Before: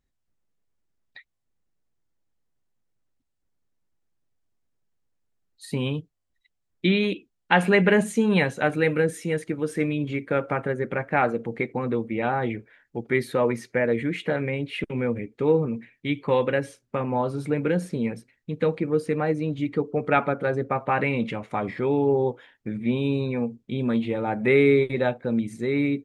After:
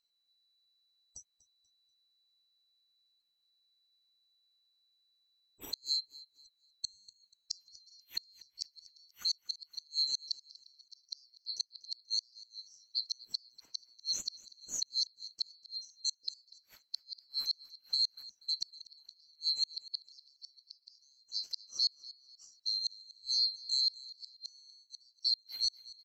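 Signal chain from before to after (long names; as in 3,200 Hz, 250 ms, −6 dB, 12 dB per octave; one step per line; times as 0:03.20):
neighbouring bands swapped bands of 4,000 Hz
gate with flip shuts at −16 dBFS, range −38 dB
repeating echo 242 ms, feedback 34%, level −19.5 dB
level −4 dB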